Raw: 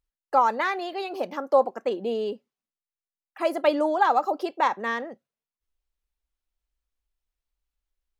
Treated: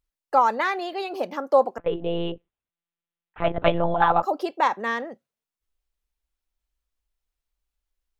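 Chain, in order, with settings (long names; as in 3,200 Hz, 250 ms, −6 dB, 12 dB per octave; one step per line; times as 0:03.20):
0:01.78–0:04.23: one-pitch LPC vocoder at 8 kHz 170 Hz
level +1.5 dB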